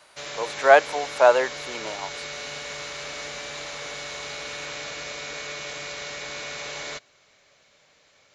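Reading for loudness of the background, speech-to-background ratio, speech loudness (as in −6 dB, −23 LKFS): −33.5 LKFS, 13.5 dB, −20.0 LKFS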